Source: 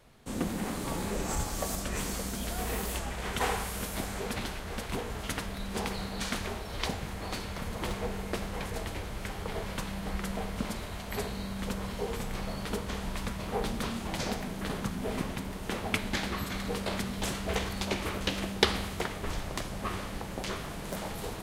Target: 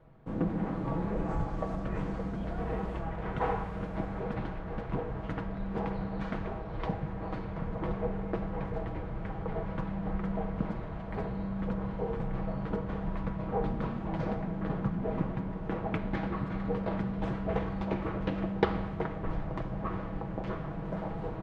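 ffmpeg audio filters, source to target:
ffmpeg -i in.wav -af "lowpass=1200,equalizer=frequency=120:width_type=o:width=1.1:gain=4.5,aecho=1:1:6.2:0.47" out.wav

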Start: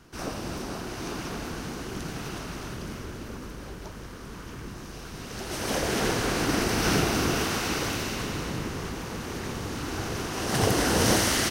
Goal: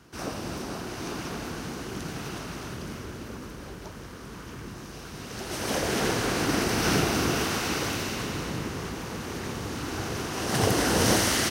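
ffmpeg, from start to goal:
ffmpeg -i in.wav -af "highpass=57" out.wav

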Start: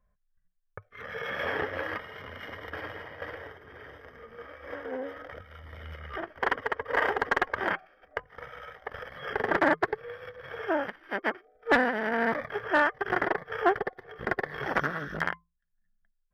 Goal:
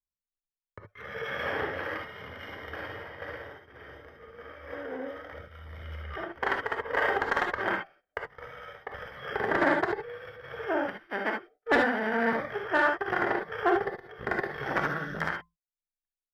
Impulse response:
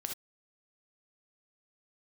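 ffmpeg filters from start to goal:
-filter_complex "[0:a]agate=range=-27dB:threshold=-49dB:ratio=16:detection=peak[link_01];[1:a]atrim=start_sample=2205,asetrate=43659,aresample=44100[link_02];[link_01][link_02]afir=irnorm=-1:irlink=0"

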